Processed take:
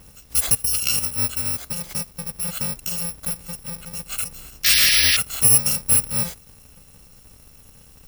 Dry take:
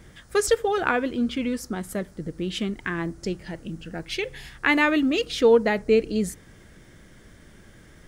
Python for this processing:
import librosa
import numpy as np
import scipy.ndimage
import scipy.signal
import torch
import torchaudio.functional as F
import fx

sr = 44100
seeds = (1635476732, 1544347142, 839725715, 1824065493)

y = fx.bit_reversed(x, sr, seeds[0], block=128)
y = fx.spec_paint(y, sr, seeds[1], shape='noise', start_s=4.64, length_s=0.53, low_hz=1600.0, high_hz=5900.0, level_db=-20.0)
y = y * 10.0 ** (1.5 / 20.0)